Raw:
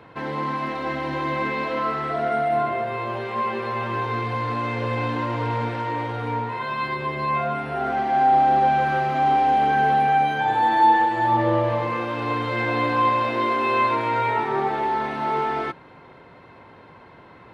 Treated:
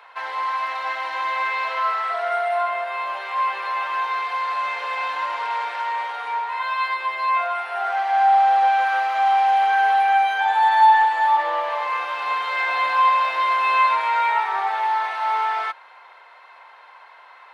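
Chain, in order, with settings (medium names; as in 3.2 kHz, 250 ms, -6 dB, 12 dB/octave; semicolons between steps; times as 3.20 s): high-pass 770 Hz 24 dB/octave; trim +4 dB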